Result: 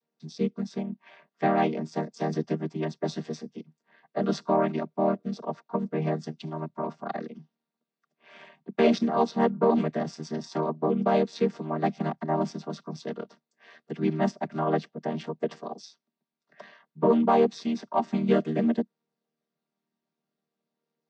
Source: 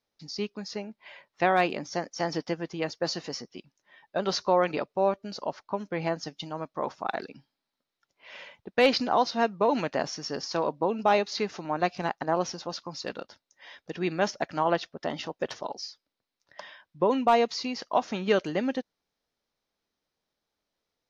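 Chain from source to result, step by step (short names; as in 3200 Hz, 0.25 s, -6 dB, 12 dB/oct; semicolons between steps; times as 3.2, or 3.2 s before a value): chord vocoder major triad, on D#3; in parallel at -9.5 dB: soft clip -18 dBFS, distortion -17 dB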